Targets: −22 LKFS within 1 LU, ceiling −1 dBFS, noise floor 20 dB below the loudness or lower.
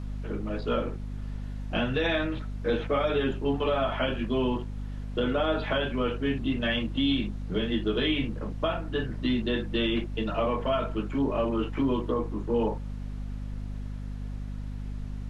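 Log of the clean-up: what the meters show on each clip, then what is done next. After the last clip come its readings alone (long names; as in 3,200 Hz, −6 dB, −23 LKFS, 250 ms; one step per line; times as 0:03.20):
mains hum 50 Hz; hum harmonics up to 250 Hz; level of the hum −32 dBFS; background noise floor −36 dBFS; target noise floor −50 dBFS; integrated loudness −29.5 LKFS; sample peak −15.0 dBFS; target loudness −22.0 LKFS
→ hum removal 50 Hz, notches 5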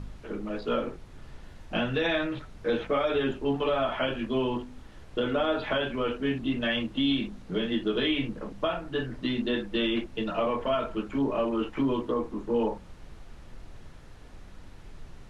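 mains hum none found; background noise floor −48 dBFS; target noise floor −50 dBFS
→ noise reduction from a noise print 6 dB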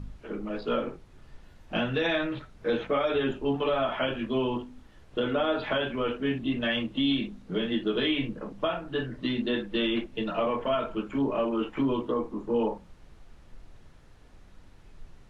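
background noise floor −54 dBFS; integrated loudness −29.5 LKFS; sample peak −16.5 dBFS; target loudness −22.0 LKFS
→ level +7.5 dB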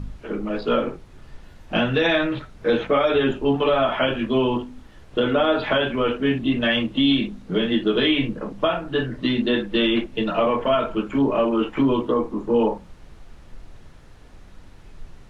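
integrated loudness −22.0 LKFS; sample peak −9.0 dBFS; background noise floor −46 dBFS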